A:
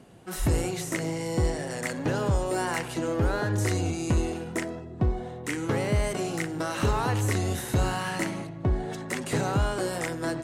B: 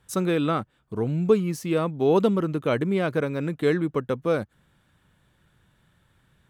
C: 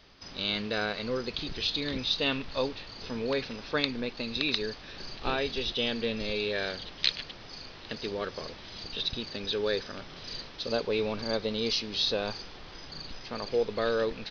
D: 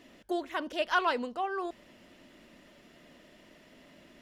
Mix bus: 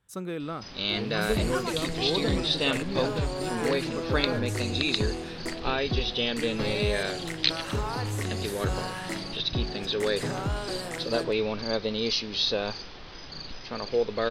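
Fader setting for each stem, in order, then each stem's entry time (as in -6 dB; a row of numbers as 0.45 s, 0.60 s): -5.0 dB, -10.5 dB, +2.0 dB, -8.0 dB; 0.90 s, 0.00 s, 0.40 s, 0.60 s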